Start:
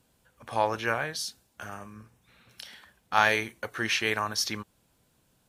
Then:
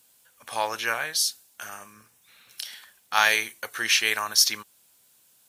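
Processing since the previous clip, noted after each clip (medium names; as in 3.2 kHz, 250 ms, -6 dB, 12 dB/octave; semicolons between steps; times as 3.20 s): tilt EQ +4 dB/octave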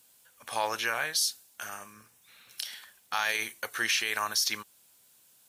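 peak limiter -16 dBFS, peak gain reduction 10.5 dB; trim -1 dB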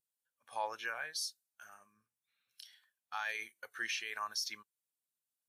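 spectral contrast expander 1.5:1; trim -8 dB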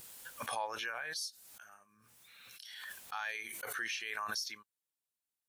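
swell ahead of each attack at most 25 dB/s; trim -1.5 dB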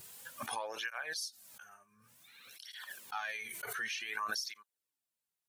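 cancelling through-zero flanger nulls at 0.55 Hz, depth 3.9 ms; trim +3 dB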